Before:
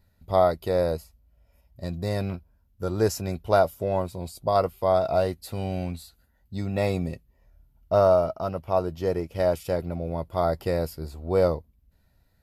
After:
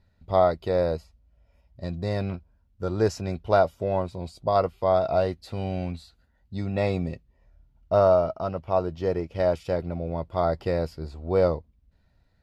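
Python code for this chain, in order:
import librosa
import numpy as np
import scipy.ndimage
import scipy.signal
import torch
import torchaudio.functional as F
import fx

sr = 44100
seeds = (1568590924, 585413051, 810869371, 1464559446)

y = scipy.signal.sosfilt(scipy.signal.butter(2, 5100.0, 'lowpass', fs=sr, output='sos'), x)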